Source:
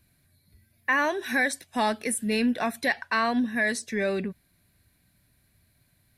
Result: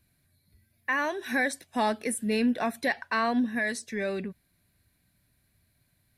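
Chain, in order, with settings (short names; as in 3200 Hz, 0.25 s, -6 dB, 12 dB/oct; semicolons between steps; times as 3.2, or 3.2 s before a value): 1.26–3.59 bell 400 Hz +4 dB 2.9 oct; gain -4 dB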